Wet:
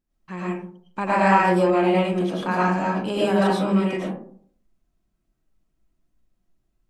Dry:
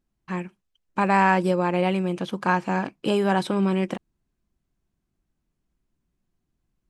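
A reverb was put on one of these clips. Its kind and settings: algorithmic reverb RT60 0.56 s, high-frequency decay 0.35×, pre-delay 70 ms, DRR -7 dB; trim -5 dB

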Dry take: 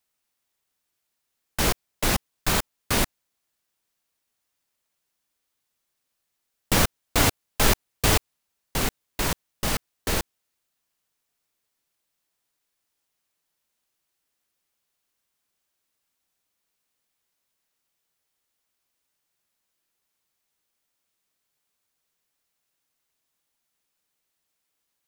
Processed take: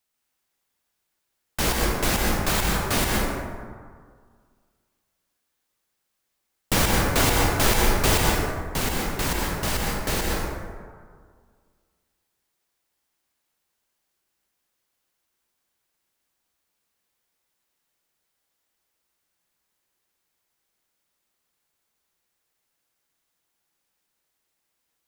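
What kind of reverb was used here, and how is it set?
plate-style reverb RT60 1.9 s, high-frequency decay 0.4×, pre-delay 110 ms, DRR -2 dB; trim -1 dB

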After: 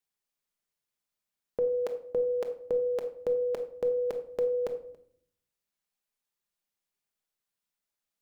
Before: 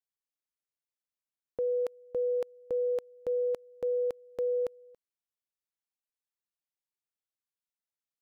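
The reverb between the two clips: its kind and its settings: simulated room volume 950 m³, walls furnished, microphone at 1.3 m; trim +5 dB

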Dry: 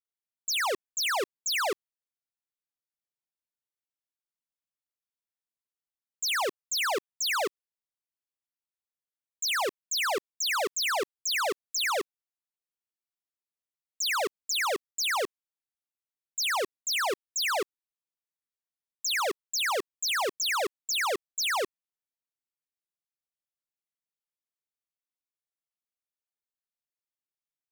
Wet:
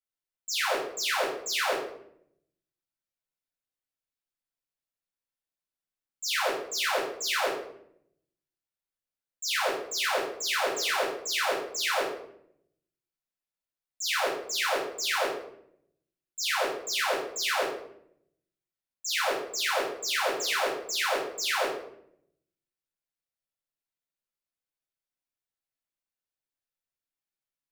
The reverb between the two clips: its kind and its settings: simulated room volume 140 m³, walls mixed, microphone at 2.1 m; trim -7.5 dB

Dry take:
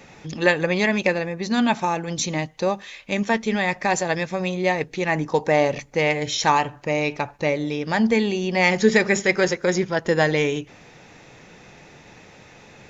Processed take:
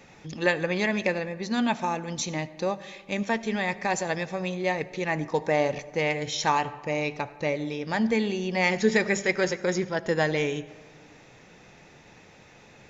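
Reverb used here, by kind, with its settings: algorithmic reverb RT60 1.6 s, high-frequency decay 0.45×, pre-delay 35 ms, DRR 16.5 dB; trim -5.5 dB

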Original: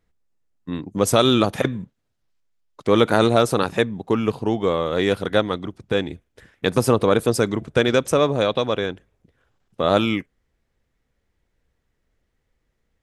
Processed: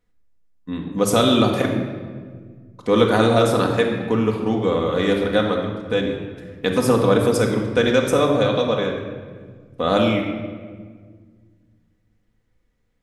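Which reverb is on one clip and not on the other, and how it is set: simulated room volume 2000 m³, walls mixed, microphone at 1.9 m; trim -2.5 dB

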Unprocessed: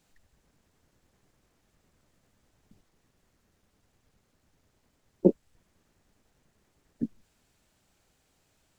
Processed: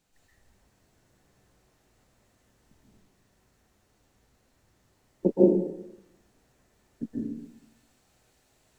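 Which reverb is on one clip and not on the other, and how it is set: plate-style reverb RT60 0.88 s, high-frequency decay 0.9×, pre-delay 115 ms, DRR -7.5 dB; trim -4 dB

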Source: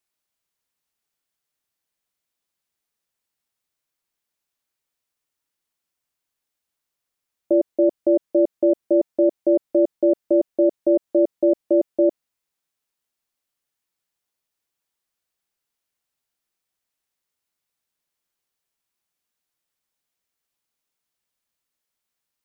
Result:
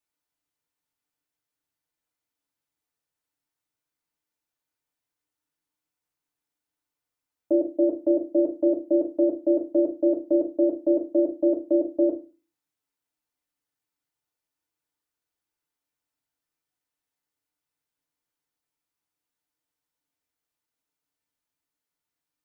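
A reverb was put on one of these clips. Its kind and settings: FDN reverb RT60 0.31 s, low-frequency decay 1.3×, high-frequency decay 0.35×, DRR -1 dB; trim -7 dB

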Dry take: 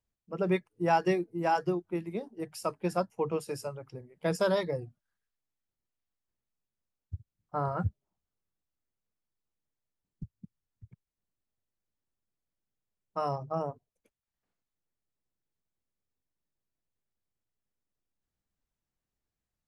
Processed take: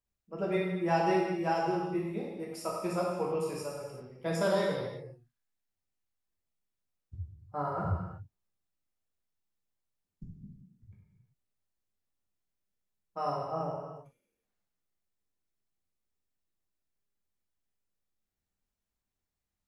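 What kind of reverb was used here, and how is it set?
gated-style reverb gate 410 ms falling, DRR -4.5 dB; trim -6 dB

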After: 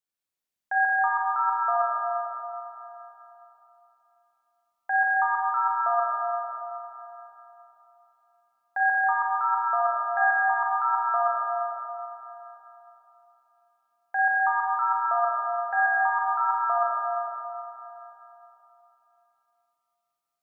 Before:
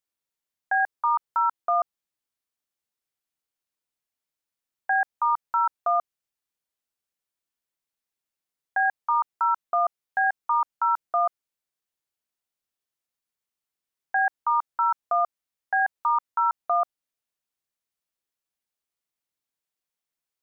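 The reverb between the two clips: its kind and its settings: Schroeder reverb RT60 3.3 s, combs from 30 ms, DRR -3.5 dB; trim -5 dB

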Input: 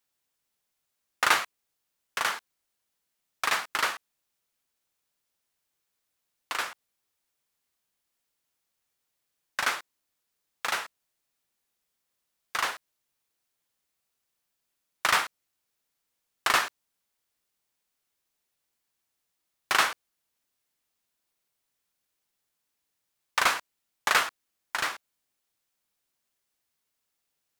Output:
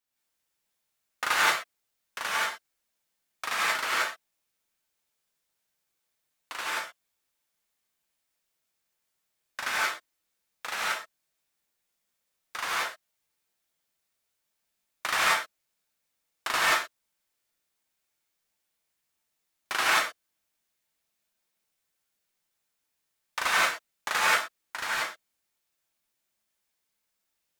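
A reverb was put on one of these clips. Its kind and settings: gated-style reverb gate 200 ms rising, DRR -7.5 dB; trim -7 dB

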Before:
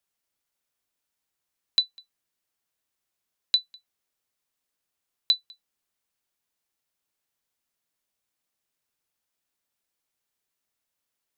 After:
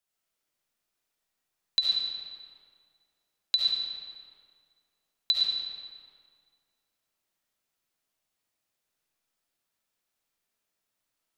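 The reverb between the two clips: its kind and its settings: algorithmic reverb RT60 2.1 s, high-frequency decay 0.7×, pre-delay 30 ms, DRR -4 dB; trim -3.5 dB

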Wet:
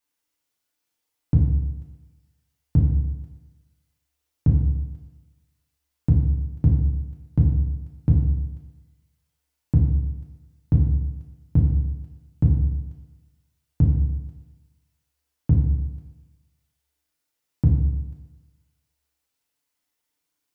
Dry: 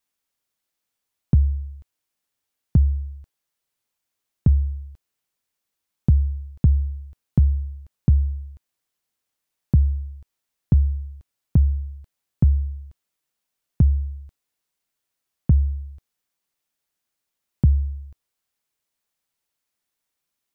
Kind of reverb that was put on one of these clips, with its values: FDN reverb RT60 1.1 s, low-frequency decay 1×, high-frequency decay 0.95×, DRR -2.5 dB; trim -3 dB

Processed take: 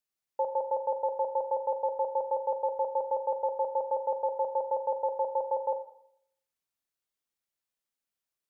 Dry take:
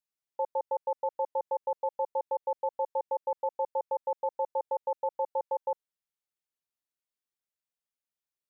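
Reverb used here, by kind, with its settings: Schroeder reverb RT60 0.7 s, combs from 28 ms, DRR 7.5 dB; trim +2 dB

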